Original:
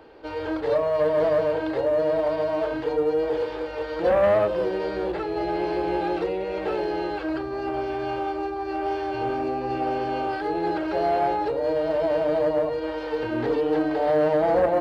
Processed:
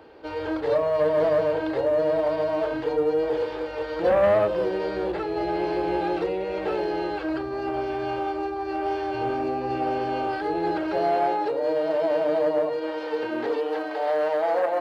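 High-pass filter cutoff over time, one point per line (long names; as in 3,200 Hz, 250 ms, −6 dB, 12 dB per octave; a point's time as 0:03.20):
0:10.77 51 Hz
0:11.28 210 Hz
0:13.13 210 Hz
0:13.78 570 Hz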